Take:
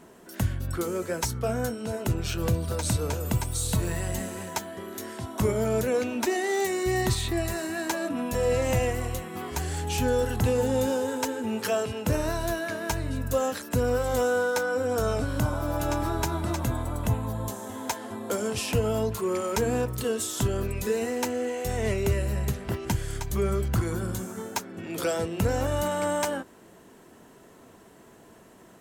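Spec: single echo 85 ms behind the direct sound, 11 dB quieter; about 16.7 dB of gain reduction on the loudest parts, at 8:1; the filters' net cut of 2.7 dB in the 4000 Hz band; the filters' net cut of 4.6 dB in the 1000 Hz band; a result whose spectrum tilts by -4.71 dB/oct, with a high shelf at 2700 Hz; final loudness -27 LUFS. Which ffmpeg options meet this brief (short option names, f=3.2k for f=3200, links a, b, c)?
-af "equalizer=f=1k:t=o:g=-6.5,highshelf=f=2.7k:g=3,equalizer=f=4k:t=o:g=-6,acompressor=threshold=-38dB:ratio=8,aecho=1:1:85:0.282,volume=14dB"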